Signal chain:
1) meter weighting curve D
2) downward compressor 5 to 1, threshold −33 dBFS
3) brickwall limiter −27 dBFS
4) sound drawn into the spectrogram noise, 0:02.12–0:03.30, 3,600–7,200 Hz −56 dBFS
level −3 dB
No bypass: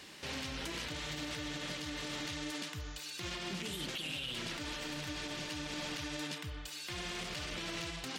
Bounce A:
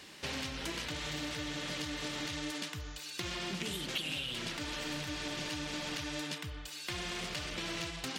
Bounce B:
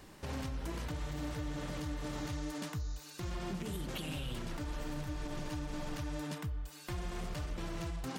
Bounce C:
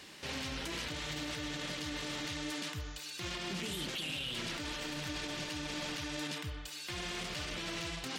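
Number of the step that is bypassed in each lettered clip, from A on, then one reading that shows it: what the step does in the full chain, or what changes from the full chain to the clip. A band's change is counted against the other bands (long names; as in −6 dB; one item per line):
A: 3, average gain reduction 1.5 dB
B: 1, 4 kHz band −10.0 dB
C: 2, average gain reduction 6.5 dB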